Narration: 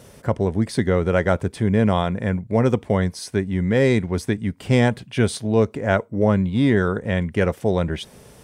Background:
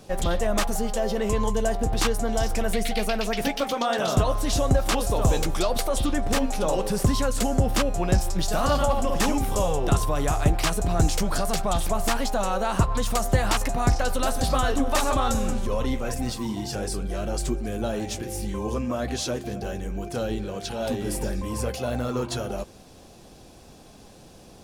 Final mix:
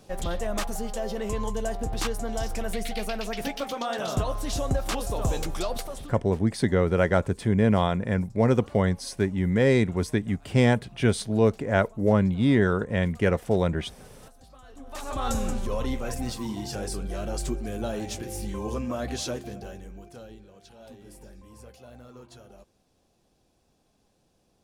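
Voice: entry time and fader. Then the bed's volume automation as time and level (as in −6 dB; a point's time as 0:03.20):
5.85 s, −3.0 dB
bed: 0:05.74 −5.5 dB
0:06.36 −29 dB
0:14.61 −29 dB
0:15.30 −3 dB
0:19.29 −3 dB
0:20.47 −20 dB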